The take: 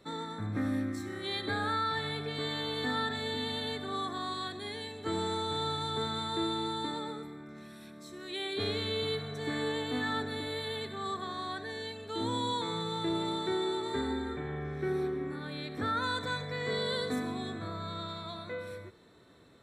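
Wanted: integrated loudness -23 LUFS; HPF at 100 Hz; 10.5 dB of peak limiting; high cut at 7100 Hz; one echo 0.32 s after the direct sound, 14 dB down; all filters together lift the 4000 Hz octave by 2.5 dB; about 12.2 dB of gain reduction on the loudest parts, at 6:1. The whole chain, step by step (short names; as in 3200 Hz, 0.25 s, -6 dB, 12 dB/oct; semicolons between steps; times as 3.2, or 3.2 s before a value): HPF 100 Hz; LPF 7100 Hz; bell 4000 Hz +3 dB; compressor 6:1, threshold -42 dBFS; limiter -42.5 dBFS; echo 0.32 s -14 dB; gain +27 dB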